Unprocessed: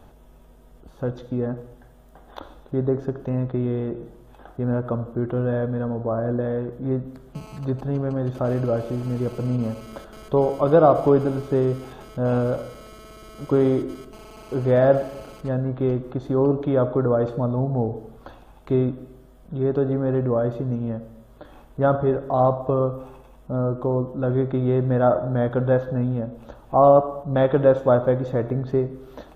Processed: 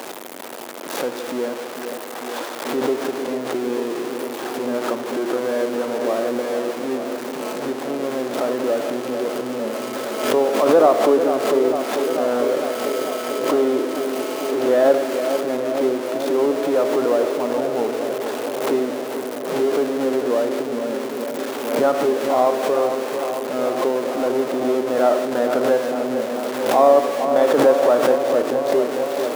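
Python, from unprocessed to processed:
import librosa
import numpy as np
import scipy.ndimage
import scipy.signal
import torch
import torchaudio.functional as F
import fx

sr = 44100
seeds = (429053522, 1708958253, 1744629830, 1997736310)

y = x + 0.5 * 10.0 ** (-24.0 / 20.0) * np.sign(x)
y = scipy.signal.sosfilt(scipy.signal.butter(4, 280.0, 'highpass', fs=sr, output='sos'), y)
y = fx.echo_filtered(y, sr, ms=446, feedback_pct=83, hz=2100.0, wet_db=-8.0)
y = fx.pre_swell(y, sr, db_per_s=57.0)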